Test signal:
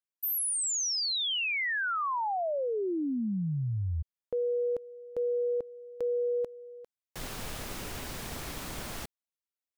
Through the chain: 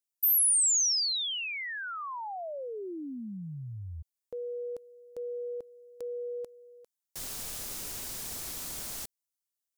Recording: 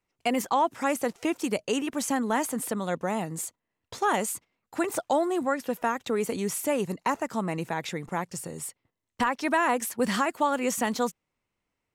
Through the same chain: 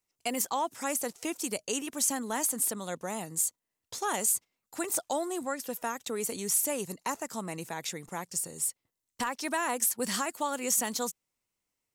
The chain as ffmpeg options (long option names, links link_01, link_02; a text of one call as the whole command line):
ffmpeg -i in.wav -af "bass=frequency=250:gain=-2,treble=frequency=4000:gain=14,volume=-7dB" out.wav